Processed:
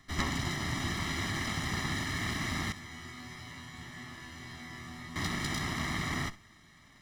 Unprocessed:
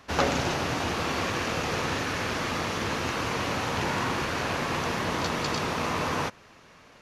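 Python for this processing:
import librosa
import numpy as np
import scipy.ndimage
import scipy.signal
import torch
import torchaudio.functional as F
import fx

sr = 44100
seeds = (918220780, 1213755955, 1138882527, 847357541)

y = fx.lower_of_two(x, sr, delay_ms=0.54)
y = y + 0.89 * np.pad(y, (int(1.0 * sr / 1000.0), 0))[:len(y)]
y = fx.rider(y, sr, range_db=10, speed_s=0.5)
y = fx.resonator_bank(y, sr, root=40, chord='fifth', decay_s=0.37, at=(2.72, 5.16))
y = fx.room_flutter(y, sr, wall_m=11.1, rt60_s=0.23)
y = F.gain(torch.from_numpy(y), -6.0).numpy()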